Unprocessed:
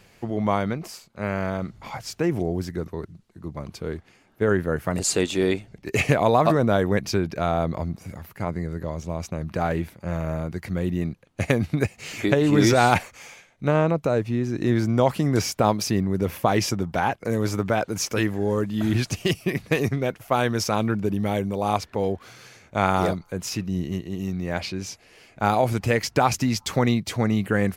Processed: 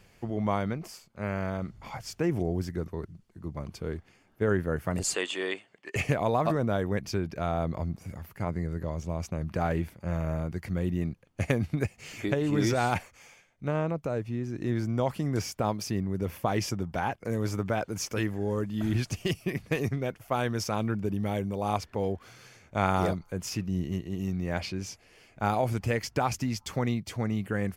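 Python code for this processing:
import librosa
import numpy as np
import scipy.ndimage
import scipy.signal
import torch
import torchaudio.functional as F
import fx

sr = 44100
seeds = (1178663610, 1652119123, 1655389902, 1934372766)

y = fx.cabinet(x, sr, low_hz=450.0, low_slope=12, high_hz=9100.0, hz=(1100.0, 1800.0, 3000.0, 5700.0, 8200.0), db=(7, 7, 9, -7, 3), at=(5.14, 5.96))
y = fx.low_shelf(y, sr, hz=92.0, db=7.0)
y = fx.notch(y, sr, hz=3900.0, q=12.0)
y = fx.rider(y, sr, range_db=3, speed_s=2.0)
y = y * librosa.db_to_amplitude(-7.5)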